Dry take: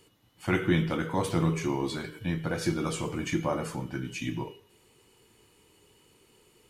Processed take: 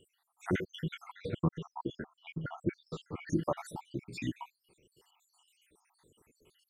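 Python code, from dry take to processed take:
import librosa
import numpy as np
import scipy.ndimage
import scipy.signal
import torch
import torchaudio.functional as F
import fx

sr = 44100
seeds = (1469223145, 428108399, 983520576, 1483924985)

y = fx.spec_dropout(x, sr, seeds[0], share_pct=78)
y = fx.lowpass(y, sr, hz=2700.0, slope=12, at=(1.12, 3.3))
y = y * librosa.db_to_amplitude(-1.5)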